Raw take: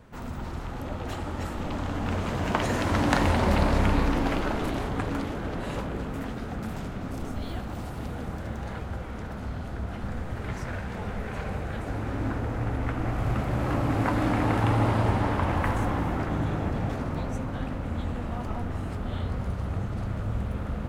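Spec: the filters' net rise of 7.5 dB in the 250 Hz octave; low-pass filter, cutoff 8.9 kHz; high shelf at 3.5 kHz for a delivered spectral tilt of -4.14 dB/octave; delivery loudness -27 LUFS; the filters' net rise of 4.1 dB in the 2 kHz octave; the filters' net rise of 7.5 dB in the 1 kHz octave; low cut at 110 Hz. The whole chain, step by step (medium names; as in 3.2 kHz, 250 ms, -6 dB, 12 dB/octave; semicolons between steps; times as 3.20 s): high-pass 110 Hz; low-pass 8.9 kHz; peaking EQ 250 Hz +9 dB; peaking EQ 1 kHz +8.5 dB; peaking EQ 2 kHz +3 dB; treble shelf 3.5 kHz -4.5 dB; trim -2 dB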